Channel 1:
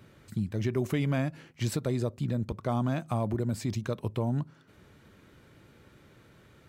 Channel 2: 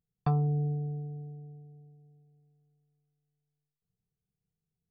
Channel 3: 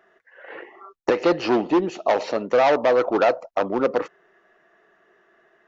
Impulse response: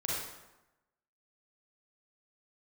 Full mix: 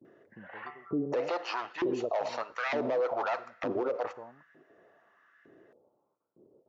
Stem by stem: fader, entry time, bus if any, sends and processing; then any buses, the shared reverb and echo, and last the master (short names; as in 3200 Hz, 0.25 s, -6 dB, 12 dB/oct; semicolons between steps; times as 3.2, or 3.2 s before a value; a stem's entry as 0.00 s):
-0.5 dB, 0.00 s, no send, gate with hold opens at -48 dBFS; Gaussian blur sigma 14 samples; low shelf 68 Hz +11 dB
-6.0 dB, 0.40 s, no send, auto duck -12 dB, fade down 1.70 s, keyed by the first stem
-8.5 dB, 0.05 s, send -23 dB, dry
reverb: on, RT60 1.0 s, pre-delay 33 ms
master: LFO high-pass saw up 1.1 Hz 300–1800 Hz; limiter -22.5 dBFS, peak gain reduction 12.5 dB